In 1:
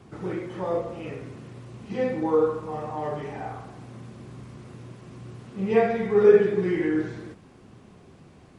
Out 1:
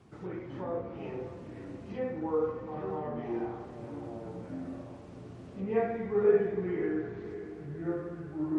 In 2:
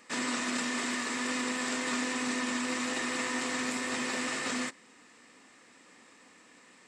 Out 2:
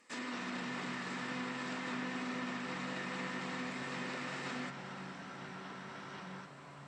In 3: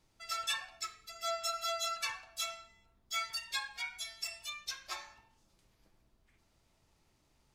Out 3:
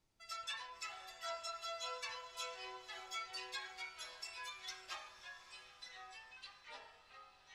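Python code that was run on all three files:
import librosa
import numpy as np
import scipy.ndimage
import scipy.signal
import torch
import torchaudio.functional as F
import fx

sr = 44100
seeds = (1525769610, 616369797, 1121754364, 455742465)

y = fx.env_lowpass_down(x, sr, base_hz=2000.0, full_db=-25.5)
y = fx.echo_diffused(y, sr, ms=568, feedback_pct=48, wet_db=-12.5)
y = fx.echo_pitch(y, sr, ms=182, semitones=-5, count=2, db_per_echo=-6.0)
y = y * 10.0 ** (-8.5 / 20.0)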